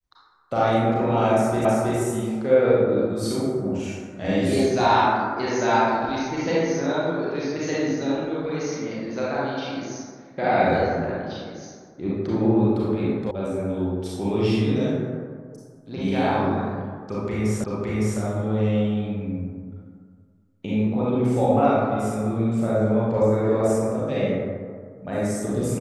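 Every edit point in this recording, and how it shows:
1.65 s: repeat of the last 0.32 s
13.31 s: sound stops dead
17.64 s: repeat of the last 0.56 s

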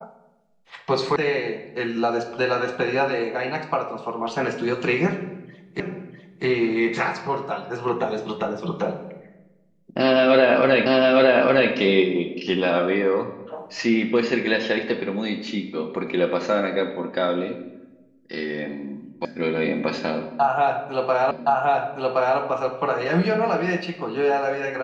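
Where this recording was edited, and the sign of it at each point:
1.16 s: sound stops dead
5.80 s: repeat of the last 0.65 s
10.86 s: repeat of the last 0.86 s
19.25 s: sound stops dead
21.31 s: repeat of the last 1.07 s

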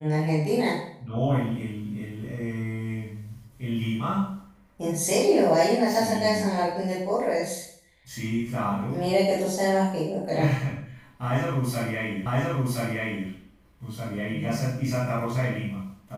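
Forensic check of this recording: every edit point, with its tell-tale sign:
12.26 s: repeat of the last 1.02 s

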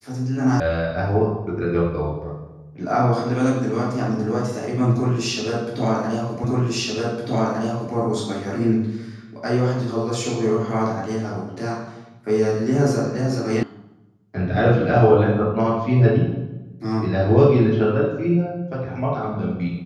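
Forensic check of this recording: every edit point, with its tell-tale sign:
0.60 s: sound stops dead
6.44 s: repeat of the last 1.51 s
13.63 s: sound stops dead

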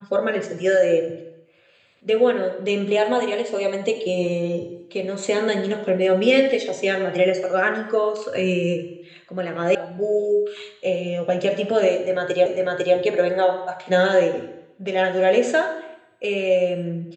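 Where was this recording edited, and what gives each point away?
9.75 s: sound stops dead
12.46 s: repeat of the last 0.5 s

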